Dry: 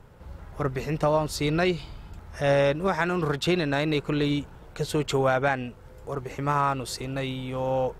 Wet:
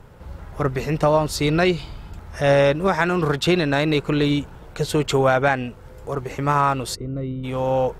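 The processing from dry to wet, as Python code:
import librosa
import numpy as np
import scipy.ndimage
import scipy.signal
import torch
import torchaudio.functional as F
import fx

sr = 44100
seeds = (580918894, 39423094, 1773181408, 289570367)

y = fx.moving_average(x, sr, points=52, at=(6.94, 7.43), fade=0.02)
y = F.gain(torch.from_numpy(y), 5.5).numpy()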